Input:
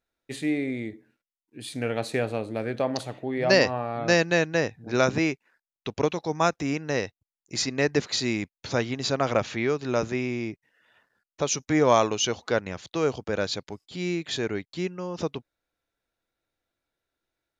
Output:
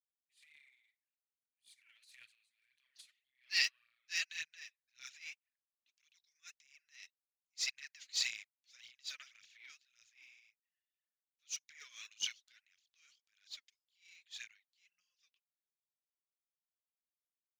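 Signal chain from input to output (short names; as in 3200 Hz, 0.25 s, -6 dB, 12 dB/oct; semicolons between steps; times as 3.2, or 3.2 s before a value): inverse Chebyshev high-pass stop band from 850 Hz, stop band 50 dB; phaser 1.8 Hz, delay 4 ms, feedback 63%; transient shaper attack -9 dB, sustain +9 dB; upward expander 2.5:1, over -44 dBFS; gain -4 dB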